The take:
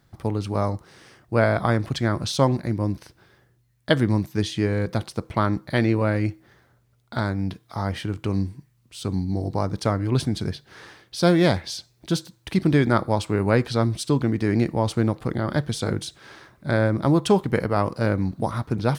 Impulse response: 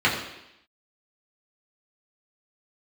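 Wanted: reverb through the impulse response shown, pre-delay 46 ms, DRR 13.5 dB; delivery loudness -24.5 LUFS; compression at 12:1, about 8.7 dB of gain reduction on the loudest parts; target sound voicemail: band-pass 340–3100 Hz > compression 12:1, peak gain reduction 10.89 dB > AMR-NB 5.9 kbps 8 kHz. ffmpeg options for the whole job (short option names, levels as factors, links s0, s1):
-filter_complex "[0:a]acompressor=threshold=0.0794:ratio=12,asplit=2[s0][s1];[1:a]atrim=start_sample=2205,adelay=46[s2];[s1][s2]afir=irnorm=-1:irlink=0,volume=0.0266[s3];[s0][s3]amix=inputs=2:normalize=0,highpass=340,lowpass=3100,acompressor=threshold=0.0251:ratio=12,volume=6.31" -ar 8000 -c:a libopencore_amrnb -b:a 5900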